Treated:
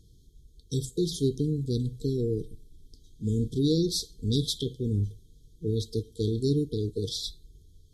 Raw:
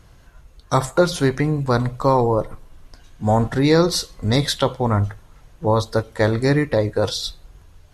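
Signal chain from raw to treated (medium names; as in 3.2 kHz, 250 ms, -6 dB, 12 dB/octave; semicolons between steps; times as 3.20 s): brick-wall FIR band-stop 480–3100 Hz; trim -7.5 dB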